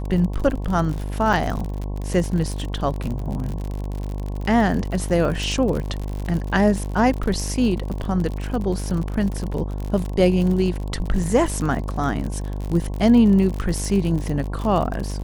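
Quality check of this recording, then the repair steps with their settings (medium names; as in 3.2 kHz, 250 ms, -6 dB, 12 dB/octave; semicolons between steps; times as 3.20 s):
buzz 50 Hz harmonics 22 -27 dBFS
crackle 58 per s -26 dBFS
1.33 s: dropout 4.8 ms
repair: de-click; de-hum 50 Hz, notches 22; interpolate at 1.33 s, 4.8 ms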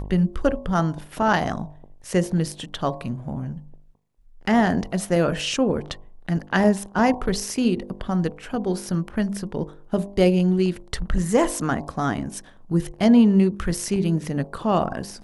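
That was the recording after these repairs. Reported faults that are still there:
nothing left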